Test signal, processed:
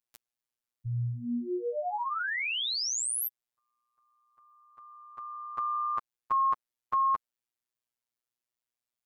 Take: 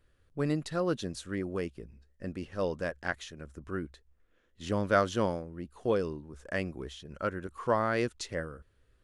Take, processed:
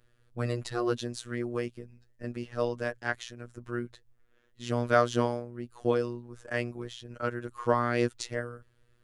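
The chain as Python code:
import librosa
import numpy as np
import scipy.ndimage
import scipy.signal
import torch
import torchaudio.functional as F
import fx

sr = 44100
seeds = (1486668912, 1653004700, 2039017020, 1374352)

y = fx.robotise(x, sr, hz=120.0)
y = F.gain(torch.from_numpy(y), 4.0).numpy()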